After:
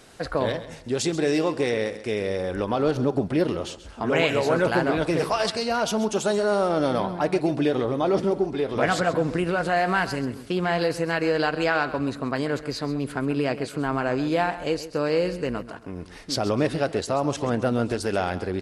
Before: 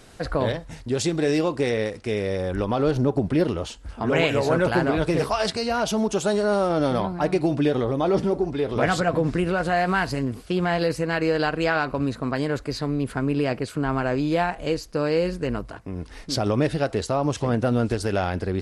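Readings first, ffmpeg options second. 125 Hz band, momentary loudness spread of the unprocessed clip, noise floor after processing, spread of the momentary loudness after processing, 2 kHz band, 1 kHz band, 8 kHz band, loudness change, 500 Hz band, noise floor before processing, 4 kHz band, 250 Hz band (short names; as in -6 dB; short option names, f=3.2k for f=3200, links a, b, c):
-4.0 dB, 6 LU, -42 dBFS, 6 LU, 0.0 dB, 0.0 dB, 0.0 dB, -1.0 dB, -0.5 dB, -43 dBFS, 0.0 dB, -1.5 dB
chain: -af "lowshelf=f=120:g=-10,aecho=1:1:133|266|399:0.2|0.0619|0.0192"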